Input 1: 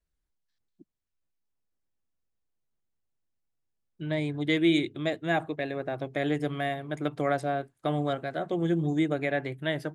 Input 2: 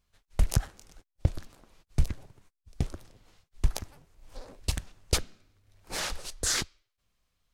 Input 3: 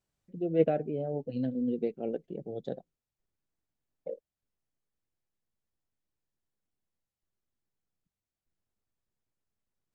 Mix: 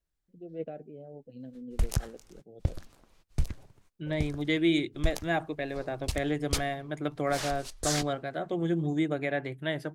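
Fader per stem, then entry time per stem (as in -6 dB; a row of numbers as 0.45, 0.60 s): -2.0, -3.5, -12.5 dB; 0.00, 1.40, 0.00 s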